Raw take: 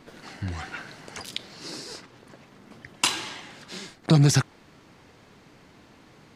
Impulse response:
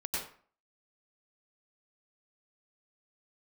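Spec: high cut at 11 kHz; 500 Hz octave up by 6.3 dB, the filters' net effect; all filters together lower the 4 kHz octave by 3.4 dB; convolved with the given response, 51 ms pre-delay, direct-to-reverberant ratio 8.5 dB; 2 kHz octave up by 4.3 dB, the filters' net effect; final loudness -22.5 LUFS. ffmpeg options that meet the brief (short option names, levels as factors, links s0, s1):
-filter_complex "[0:a]lowpass=11000,equalizer=f=500:t=o:g=7.5,equalizer=f=2000:t=o:g=7.5,equalizer=f=4000:t=o:g=-7.5,asplit=2[s0][s1];[1:a]atrim=start_sample=2205,adelay=51[s2];[s1][s2]afir=irnorm=-1:irlink=0,volume=0.237[s3];[s0][s3]amix=inputs=2:normalize=0,volume=1.41"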